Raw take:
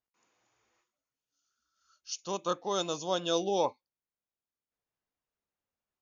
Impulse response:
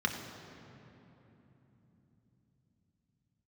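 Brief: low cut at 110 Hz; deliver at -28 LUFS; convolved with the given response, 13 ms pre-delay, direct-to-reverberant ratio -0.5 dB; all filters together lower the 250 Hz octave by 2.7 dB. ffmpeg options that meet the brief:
-filter_complex "[0:a]highpass=110,equalizer=f=250:t=o:g=-4.5,asplit=2[a][b];[1:a]atrim=start_sample=2205,adelay=13[c];[b][c]afir=irnorm=-1:irlink=0,volume=-7dB[d];[a][d]amix=inputs=2:normalize=0,volume=3dB"

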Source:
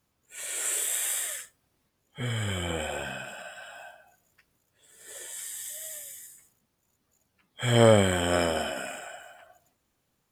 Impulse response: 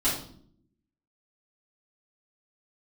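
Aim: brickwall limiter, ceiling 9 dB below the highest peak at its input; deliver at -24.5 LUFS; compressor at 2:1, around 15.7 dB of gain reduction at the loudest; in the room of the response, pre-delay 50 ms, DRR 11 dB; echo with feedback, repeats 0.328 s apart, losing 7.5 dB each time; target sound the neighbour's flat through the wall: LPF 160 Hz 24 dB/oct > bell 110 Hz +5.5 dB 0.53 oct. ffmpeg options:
-filter_complex "[0:a]acompressor=threshold=-43dB:ratio=2,alimiter=level_in=5.5dB:limit=-24dB:level=0:latency=1,volume=-5.5dB,aecho=1:1:328|656|984|1312|1640:0.422|0.177|0.0744|0.0312|0.0131,asplit=2[a][b];[1:a]atrim=start_sample=2205,adelay=50[c];[b][c]afir=irnorm=-1:irlink=0,volume=-21.5dB[d];[a][d]amix=inputs=2:normalize=0,lowpass=f=160:w=0.5412,lowpass=f=160:w=1.3066,equalizer=f=110:t=o:w=0.53:g=5.5,volume=18.5dB"

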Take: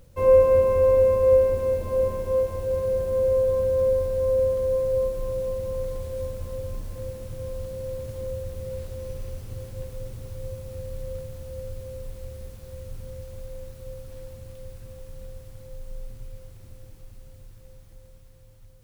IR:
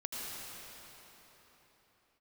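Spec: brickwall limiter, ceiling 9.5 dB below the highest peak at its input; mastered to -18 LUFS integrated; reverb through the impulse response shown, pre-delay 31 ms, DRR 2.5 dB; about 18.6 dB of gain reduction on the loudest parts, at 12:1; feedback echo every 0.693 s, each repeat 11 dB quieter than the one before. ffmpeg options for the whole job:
-filter_complex "[0:a]acompressor=threshold=-31dB:ratio=12,alimiter=level_in=8.5dB:limit=-24dB:level=0:latency=1,volume=-8.5dB,aecho=1:1:693|1386|2079:0.282|0.0789|0.0221,asplit=2[a][b];[1:a]atrim=start_sample=2205,adelay=31[c];[b][c]afir=irnorm=-1:irlink=0,volume=-5dB[d];[a][d]amix=inputs=2:normalize=0,volume=21.5dB"

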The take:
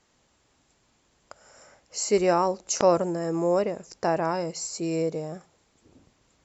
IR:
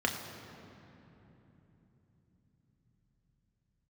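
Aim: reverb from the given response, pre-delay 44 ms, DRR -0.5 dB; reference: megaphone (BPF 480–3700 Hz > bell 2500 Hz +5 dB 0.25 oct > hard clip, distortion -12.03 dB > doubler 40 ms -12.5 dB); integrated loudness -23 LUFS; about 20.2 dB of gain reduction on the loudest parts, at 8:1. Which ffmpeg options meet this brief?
-filter_complex "[0:a]acompressor=threshold=-38dB:ratio=8,asplit=2[a][b];[1:a]atrim=start_sample=2205,adelay=44[c];[b][c]afir=irnorm=-1:irlink=0,volume=-8dB[d];[a][d]amix=inputs=2:normalize=0,highpass=480,lowpass=3.7k,equalizer=f=2.5k:t=o:w=0.25:g=5,asoftclip=type=hard:threshold=-38dB,asplit=2[e][f];[f]adelay=40,volume=-12.5dB[g];[e][g]amix=inputs=2:normalize=0,volume=21.5dB"

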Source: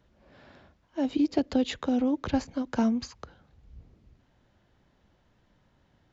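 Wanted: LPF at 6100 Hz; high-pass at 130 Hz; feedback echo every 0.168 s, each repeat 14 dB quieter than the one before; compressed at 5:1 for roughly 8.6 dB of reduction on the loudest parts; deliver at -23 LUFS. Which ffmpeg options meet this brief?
-af "highpass=130,lowpass=6.1k,acompressor=threshold=-30dB:ratio=5,aecho=1:1:168|336:0.2|0.0399,volume=12.5dB"

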